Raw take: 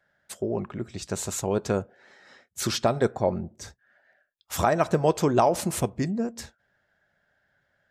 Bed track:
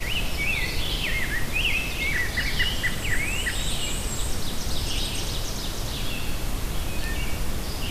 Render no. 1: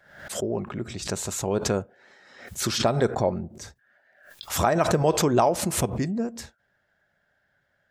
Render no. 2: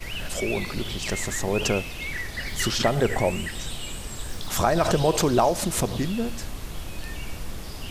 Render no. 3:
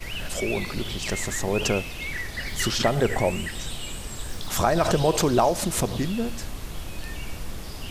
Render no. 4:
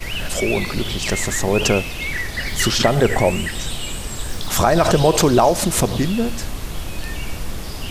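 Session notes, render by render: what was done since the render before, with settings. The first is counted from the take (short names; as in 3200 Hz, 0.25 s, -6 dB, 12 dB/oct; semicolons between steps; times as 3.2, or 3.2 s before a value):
backwards sustainer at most 84 dB/s
add bed track -6.5 dB
nothing audible
gain +7 dB; limiter -3 dBFS, peak gain reduction 2.5 dB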